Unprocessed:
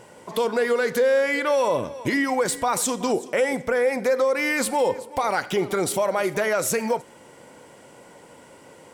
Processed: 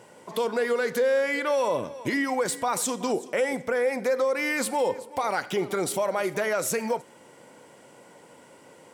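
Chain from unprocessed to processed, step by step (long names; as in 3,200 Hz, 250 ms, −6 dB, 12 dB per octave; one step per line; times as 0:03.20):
high-pass filter 110 Hz
level −3.5 dB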